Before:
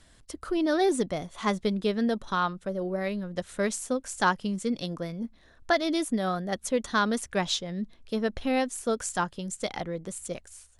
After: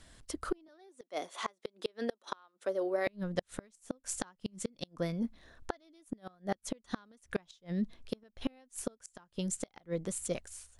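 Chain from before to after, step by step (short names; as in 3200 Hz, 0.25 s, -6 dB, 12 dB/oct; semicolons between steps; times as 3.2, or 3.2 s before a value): 0.68–3.07 HPF 330 Hz 24 dB/oct; flipped gate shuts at -20 dBFS, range -34 dB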